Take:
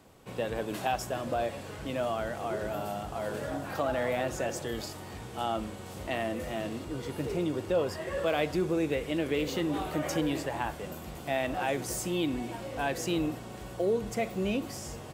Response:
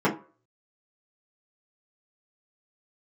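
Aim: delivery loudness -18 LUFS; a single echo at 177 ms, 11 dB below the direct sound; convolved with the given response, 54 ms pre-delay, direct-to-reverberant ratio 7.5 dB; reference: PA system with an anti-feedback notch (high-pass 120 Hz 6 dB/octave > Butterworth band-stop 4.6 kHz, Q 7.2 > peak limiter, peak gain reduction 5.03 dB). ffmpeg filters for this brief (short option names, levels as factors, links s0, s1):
-filter_complex "[0:a]aecho=1:1:177:0.282,asplit=2[s0][s1];[1:a]atrim=start_sample=2205,adelay=54[s2];[s1][s2]afir=irnorm=-1:irlink=0,volume=0.0708[s3];[s0][s3]amix=inputs=2:normalize=0,highpass=f=120:p=1,asuperstop=centerf=4600:order=8:qfactor=7.2,volume=5.01,alimiter=limit=0.447:level=0:latency=1"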